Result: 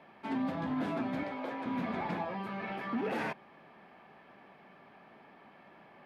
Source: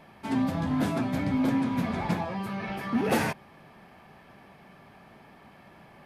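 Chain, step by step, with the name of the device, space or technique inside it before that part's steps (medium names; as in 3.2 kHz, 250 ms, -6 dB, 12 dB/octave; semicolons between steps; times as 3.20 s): DJ mixer with the lows and highs turned down (three-band isolator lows -15 dB, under 190 Hz, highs -16 dB, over 3.9 kHz; peak limiter -23 dBFS, peak gain reduction 8.5 dB); 1.23–1.66 s: resonant low shelf 330 Hz -10.5 dB, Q 1.5; trim -3 dB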